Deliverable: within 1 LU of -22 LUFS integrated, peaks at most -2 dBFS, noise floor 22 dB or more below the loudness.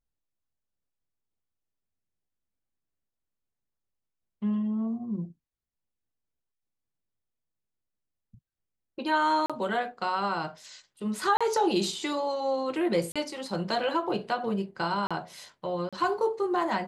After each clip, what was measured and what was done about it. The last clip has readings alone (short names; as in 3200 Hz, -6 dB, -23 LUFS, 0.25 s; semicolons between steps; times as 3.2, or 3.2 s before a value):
dropouts 5; longest dropout 36 ms; loudness -29.0 LUFS; peak -14.0 dBFS; loudness target -22.0 LUFS
-> interpolate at 9.46/11.37/13.12/15.07/15.89, 36 ms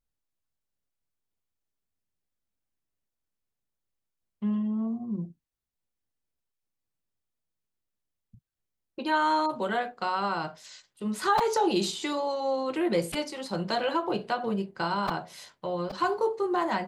dropouts 0; loudness -29.0 LUFS; peak -12.5 dBFS; loudness target -22.0 LUFS
-> gain +7 dB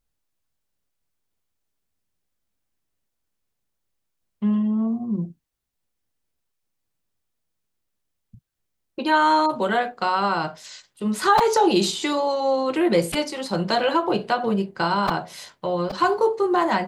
loudness -22.0 LUFS; peak -5.5 dBFS; noise floor -78 dBFS